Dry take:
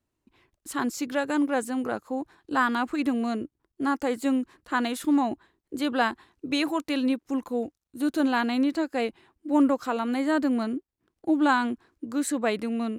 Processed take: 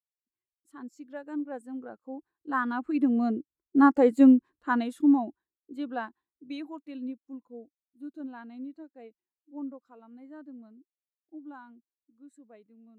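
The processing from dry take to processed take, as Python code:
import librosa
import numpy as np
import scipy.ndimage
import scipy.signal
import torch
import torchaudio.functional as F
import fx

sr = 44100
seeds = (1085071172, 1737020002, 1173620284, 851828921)

y = fx.doppler_pass(x, sr, speed_mps=5, closest_m=3.1, pass_at_s=3.93)
y = fx.spectral_expand(y, sr, expansion=1.5)
y = y * librosa.db_to_amplitude(7.0)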